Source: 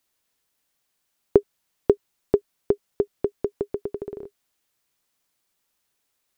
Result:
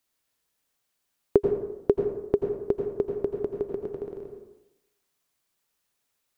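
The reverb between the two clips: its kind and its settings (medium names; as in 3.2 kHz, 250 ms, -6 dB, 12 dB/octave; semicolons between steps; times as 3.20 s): plate-style reverb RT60 0.9 s, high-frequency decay 0.55×, pre-delay 75 ms, DRR 3.5 dB; trim -3.5 dB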